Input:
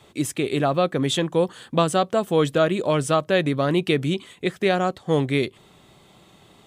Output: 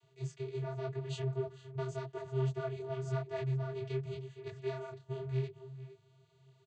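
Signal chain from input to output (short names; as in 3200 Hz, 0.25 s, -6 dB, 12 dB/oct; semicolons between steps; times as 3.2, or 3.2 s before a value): one diode to ground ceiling -21 dBFS; high shelf 3100 Hz +11 dB; outdoor echo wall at 79 m, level -13 dB; vocoder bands 16, square 132 Hz; detuned doubles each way 31 cents; gain -8.5 dB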